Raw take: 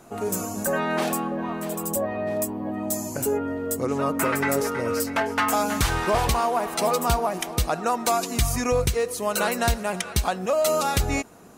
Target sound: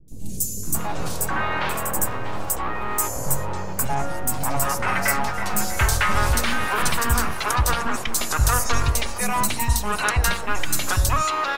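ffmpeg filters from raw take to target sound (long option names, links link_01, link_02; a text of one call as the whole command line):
ffmpeg -i in.wav -filter_complex "[0:a]bandreject=frequency=58.04:width_type=h:width=4,bandreject=frequency=116.08:width_type=h:width=4,bandreject=frequency=174.12:width_type=h:width=4,bandreject=frequency=232.16:width_type=h:width=4,bandreject=frequency=290.2:width_type=h:width=4,bandreject=frequency=348.24:width_type=h:width=4,bandreject=frequency=406.28:width_type=h:width=4,bandreject=frequency=464.32:width_type=h:width=4,bandreject=frequency=522.36:width_type=h:width=4,bandreject=frequency=580.4:width_type=h:width=4,bandreject=frequency=638.44:width_type=h:width=4,bandreject=frequency=696.48:width_type=h:width=4,bandreject=frequency=754.52:width_type=h:width=4,bandreject=frequency=812.56:width_type=h:width=4,bandreject=frequency=870.6:width_type=h:width=4,bandreject=frequency=928.64:width_type=h:width=4,bandreject=frequency=986.68:width_type=h:width=4,bandreject=frequency=1044.72:width_type=h:width=4,bandreject=frequency=1102.76:width_type=h:width=4,bandreject=frequency=1160.8:width_type=h:width=4,bandreject=frequency=1218.84:width_type=h:width=4,bandreject=frequency=1276.88:width_type=h:width=4,bandreject=frequency=1334.92:width_type=h:width=4,bandreject=frequency=1392.96:width_type=h:width=4,bandreject=frequency=1451:width_type=h:width=4,bandreject=frequency=1509.04:width_type=h:width=4,bandreject=frequency=1567.08:width_type=h:width=4,bandreject=frequency=1625.12:width_type=h:width=4,bandreject=frequency=1683.16:width_type=h:width=4,bandreject=frequency=1741.2:width_type=h:width=4,bandreject=frequency=1799.24:width_type=h:width=4,bandreject=frequency=1857.28:width_type=h:width=4,acrossover=split=150|1100[link_01][link_02][link_03];[link_02]aeval=exprs='abs(val(0))':channel_layout=same[link_04];[link_01][link_04][link_03]amix=inputs=3:normalize=0,acrossover=split=320|4200[link_05][link_06][link_07];[link_07]adelay=80[link_08];[link_06]adelay=630[link_09];[link_05][link_09][link_08]amix=inputs=3:normalize=0,volume=5.5dB" out.wav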